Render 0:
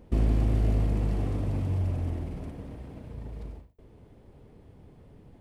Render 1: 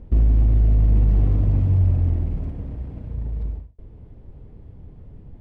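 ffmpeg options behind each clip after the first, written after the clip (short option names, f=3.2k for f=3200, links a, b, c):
-af "aemphasis=mode=reproduction:type=bsi,alimiter=limit=-9.5dB:level=0:latency=1:release=47"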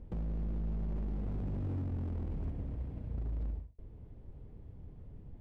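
-af "acompressor=threshold=-21dB:ratio=8,aeval=exprs='0.0708*(abs(mod(val(0)/0.0708+3,4)-2)-1)':c=same,volume=-8dB"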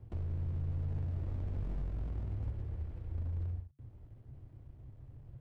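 -af "aeval=exprs='sgn(val(0))*max(abs(val(0))-0.00126,0)':c=same,afreqshift=-140"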